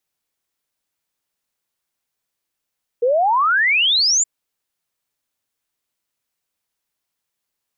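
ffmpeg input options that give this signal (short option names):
-f lavfi -i "aevalsrc='0.224*clip(min(t,1.22-t)/0.01,0,1)*sin(2*PI*460*1.22/log(7400/460)*(exp(log(7400/460)*t/1.22)-1))':d=1.22:s=44100"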